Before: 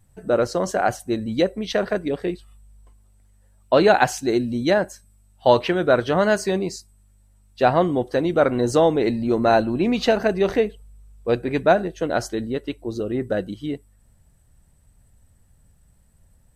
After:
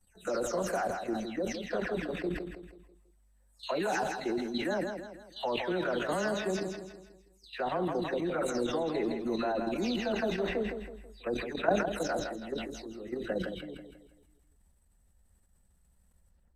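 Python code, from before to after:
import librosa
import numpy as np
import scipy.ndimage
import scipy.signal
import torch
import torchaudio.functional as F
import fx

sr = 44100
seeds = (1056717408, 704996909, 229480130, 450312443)

y = fx.spec_delay(x, sr, highs='early', ms=252)
y = fx.peak_eq(y, sr, hz=130.0, db=-13.0, octaves=0.37)
y = fx.level_steps(y, sr, step_db=12)
y = fx.echo_feedback(y, sr, ms=163, feedback_pct=44, wet_db=-8.0)
y = fx.sustainer(y, sr, db_per_s=54.0)
y = y * 10.0 ** (-7.0 / 20.0)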